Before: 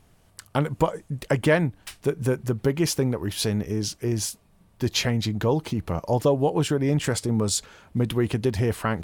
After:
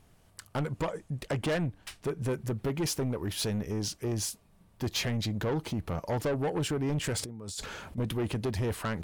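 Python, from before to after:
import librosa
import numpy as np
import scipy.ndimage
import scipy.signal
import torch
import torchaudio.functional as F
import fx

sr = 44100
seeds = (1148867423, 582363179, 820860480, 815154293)

y = fx.high_shelf(x, sr, hz=12000.0, db=-8.5, at=(0.6, 2.29))
y = fx.over_compress(y, sr, threshold_db=-36.0, ratio=-1.0, at=(7.19, 7.98))
y = 10.0 ** (-22.5 / 20.0) * np.tanh(y / 10.0 ** (-22.5 / 20.0))
y = y * librosa.db_to_amplitude(-3.0)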